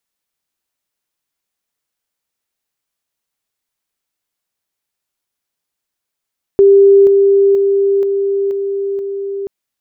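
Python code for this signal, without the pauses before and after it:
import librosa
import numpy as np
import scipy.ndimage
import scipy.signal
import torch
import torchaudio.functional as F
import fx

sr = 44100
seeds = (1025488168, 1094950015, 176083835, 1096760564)

y = fx.level_ladder(sr, hz=396.0, from_db=-3.5, step_db=-3.0, steps=6, dwell_s=0.48, gap_s=0.0)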